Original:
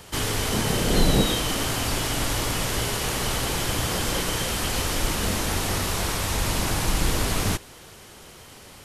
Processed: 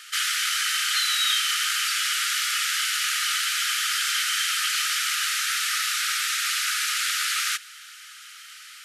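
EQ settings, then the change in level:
linear-phase brick-wall high-pass 1,200 Hz
high-shelf EQ 10,000 Hz −9 dB
+6.0 dB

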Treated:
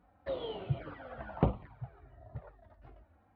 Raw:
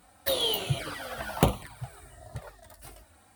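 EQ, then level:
high-frequency loss of the air 250 metres
head-to-tape spacing loss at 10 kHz 41 dB
−3.5 dB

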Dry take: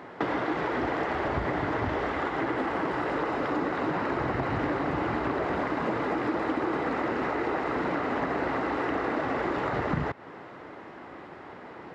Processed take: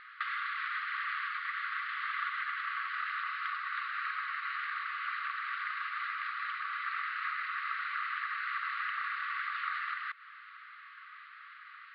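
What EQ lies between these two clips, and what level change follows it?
linear-phase brick-wall high-pass 1,100 Hz
elliptic low-pass filter 4,400 Hz, stop band 40 dB
0.0 dB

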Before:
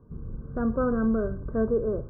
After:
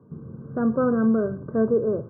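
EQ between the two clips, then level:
high-pass filter 120 Hz 24 dB per octave
high-frequency loss of the air 400 metres
+5.0 dB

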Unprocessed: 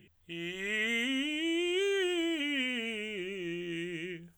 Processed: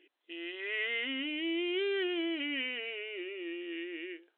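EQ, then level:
linear-phase brick-wall band-pass 260–4,200 Hz
−2.0 dB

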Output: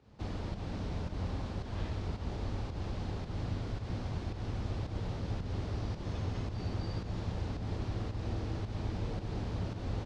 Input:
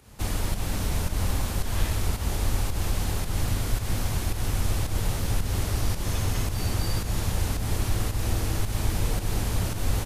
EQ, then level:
high-pass filter 110 Hz 6 dB per octave
transistor ladder low-pass 5,800 Hz, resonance 30%
tilt shelving filter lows +7 dB, about 1,200 Hz
−4.5 dB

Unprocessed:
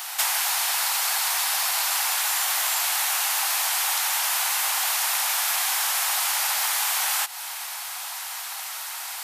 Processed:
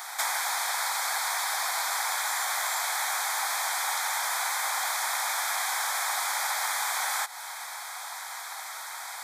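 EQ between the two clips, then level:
Butterworth band-reject 2,800 Hz, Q 3.1
parametric band 4,800 Hz −5.5 dB 1 octave
parametric band 13,000 Hz −11 dB 0.86 octaves
0.0 dB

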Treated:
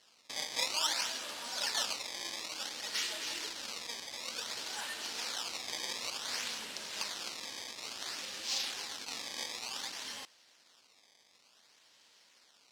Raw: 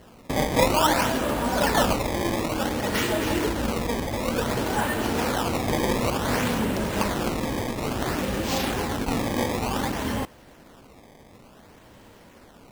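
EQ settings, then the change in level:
resonant band-pass 4,900 Hz, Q 1.7
0.0 dB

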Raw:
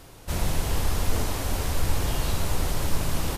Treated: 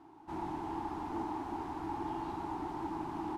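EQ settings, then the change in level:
pair of resonant band-passes 530 Hz, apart 1.4 octaves
+3.5 dB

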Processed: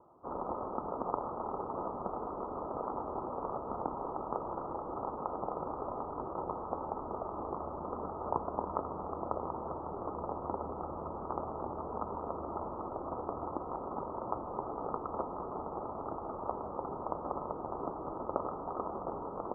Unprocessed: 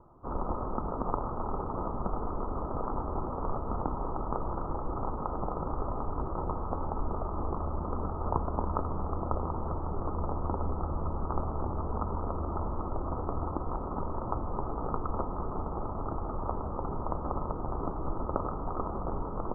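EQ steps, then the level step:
resonant band-pass 690 Hz, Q 0.77
high-frequency loss of the air 390 metres
+1.0 dB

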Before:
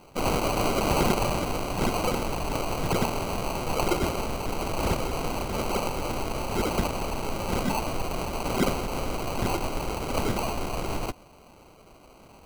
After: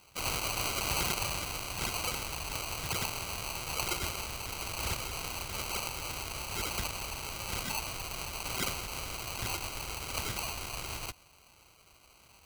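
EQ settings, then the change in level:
high-pass filter 140 Hz 6 dB per octave
parametric band 220 Hz −11.5 dB 1.4 octaves
parametric band 570 Hz −14 dB 2.6 octaves
+1.5 dB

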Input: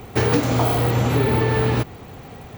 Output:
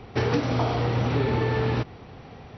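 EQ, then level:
linear-phase brick-wall low-pass 5,900 Hz
−5.0 dB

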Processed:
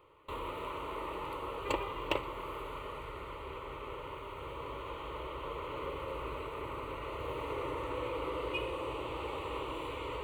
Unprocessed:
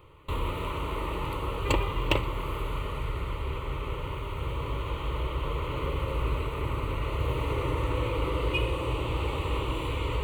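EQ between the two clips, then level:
bass and treble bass −15 dB, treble +2 dB
high-shelf EQ 2,400 Hz −9 dB
−3.0 dB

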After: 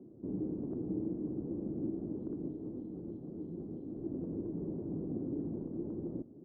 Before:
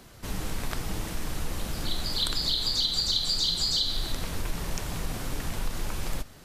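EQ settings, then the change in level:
high-pass filter 180 Hz 12 dB per octave
transistor ladder low-pass 380 Hz, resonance 55%
+9.5 dB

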